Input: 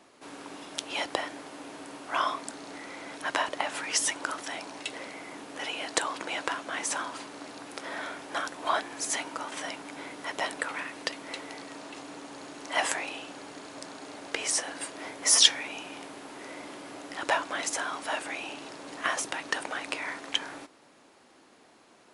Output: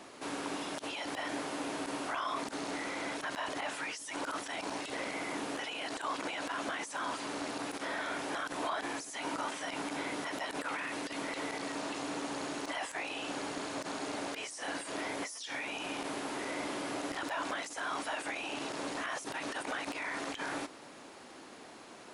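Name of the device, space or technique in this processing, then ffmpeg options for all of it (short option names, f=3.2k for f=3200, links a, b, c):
de-esser from a sidechain: -filter_complex "[0:a]asplit=2[a][b];[b]highpass=f=5.9k:p=1,apad=whole_len=976063[c];[a][c]sidechaincompress=threshold=-50dB:ratio=16:attack=0.67:release=28,volume=7dB"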